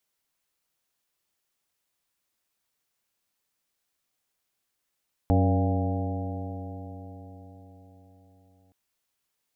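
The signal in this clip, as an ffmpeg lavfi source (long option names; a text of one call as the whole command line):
ffmpeg -f lavfi -i "aevalsrc='0.106*pow(10,-3*t/4.8)*sin(2*PI*91.46*t)+0.0447*pow(10,-3*t/4.8)*sin(2*PI*183.84*t)+0.0631*pow(10,-3*t/4.8)*sin(2*PI*278.06*t)+0.0112*pow(10,-3*t/4.8)*sin(2*PI*375*t)+0.0316*pow(10,-3*t/4.8)*sin(2*PI*475.51*t)+0.0251*pow(10,-3*t/4.8)*sin(2*PI*580.36*t)+0.0335*pow(10,-3*t/4.8)*sin(2*PI*690.29*t)+0.0282*pow(10,-3*t/4.8)*sin(2*PI*805.96*t)':duration=3.42:sample_rate=44100" out.wav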